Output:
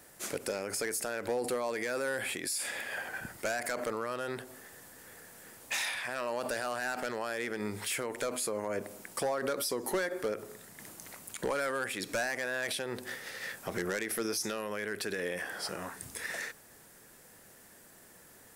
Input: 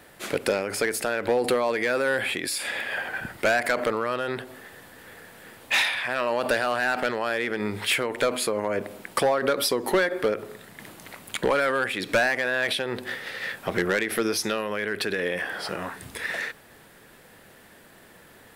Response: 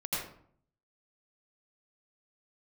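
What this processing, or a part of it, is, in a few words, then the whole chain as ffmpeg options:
over-bright horn tweeter: -af "highshelf=frequency=4700:width_type=q:width=1.5:gain=8,alimiter=limit=-17dB:level=0:latency=1:release=38,volume=-7.5dB"

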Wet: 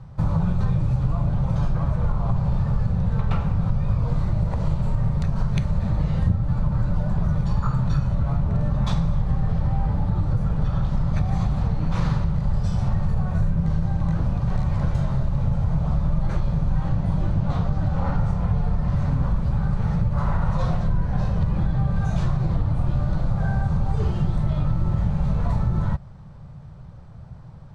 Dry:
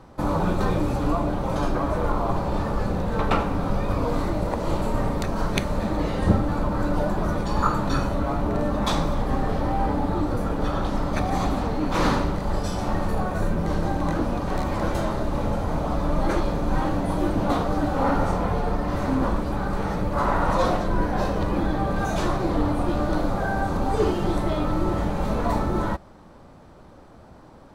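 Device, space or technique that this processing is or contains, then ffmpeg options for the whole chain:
jukebox: -filter_complex "[0:a]lowpass=7900,lowshelf=frequency=200:width_type=q:width=3:gain=12,acompressor=threshold=-13dB:ratio=4,asettb=1/sr,asplit=3[link_01][link_02][link_03];[link_01]atrim=end=16.894[link_04];[link_02]atrim=start=16.89:end=18.2,asetpts=PTS-STARTPTS,afade=type=in:duration=0.004:curve=qsin,afade=type=out:start_time=1.306:duration=0.004:curve=qsin,lowpass=8300[link_05];[link_03]atrim=start=18.196[link_06];[link_04][link_05]acrossfade=duration=0.004:curve1=hsin:curve2=qsin[link_07];[link_07][link_06]acrossfade=duration=0.004:curve1=qsin:curve2=hsin,volume=-4.5dB"

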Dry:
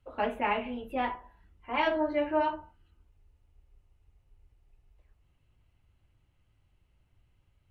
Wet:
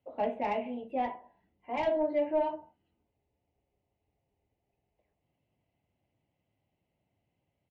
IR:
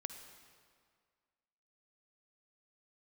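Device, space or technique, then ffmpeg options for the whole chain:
intercom: -af "highpass=310,lowpass=4000,equalizer=frequency=2000:width_type=o:width=0.21:gain=6.5,asoftclip=type=tanh:threshold=-19.5dB,firequalizer=gain_entry='entry(190,0);entry(360,-9);entry(690,-4);entry(1300,-24);entry(2300,-15)':delay=0.05:min_phase=1,volume=7.5dB"

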